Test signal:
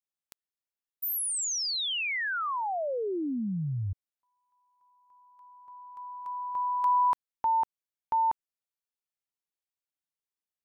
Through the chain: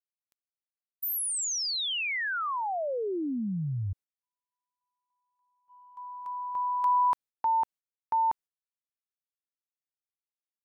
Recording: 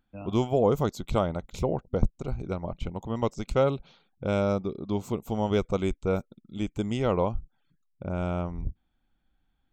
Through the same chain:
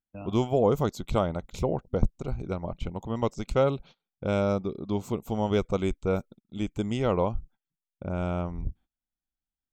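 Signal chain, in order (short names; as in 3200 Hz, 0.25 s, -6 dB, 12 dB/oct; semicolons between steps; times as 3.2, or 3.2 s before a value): gate -47 dBFS, range -22 dB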